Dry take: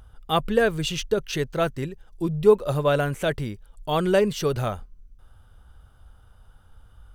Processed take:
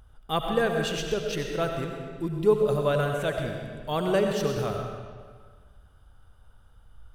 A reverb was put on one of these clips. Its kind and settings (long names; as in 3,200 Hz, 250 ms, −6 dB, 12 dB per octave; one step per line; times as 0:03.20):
comb and all-pass reverb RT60 1.7 s, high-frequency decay 0.85×, pre-delay 50 ms, DRR 2.5 dB
level −5 dB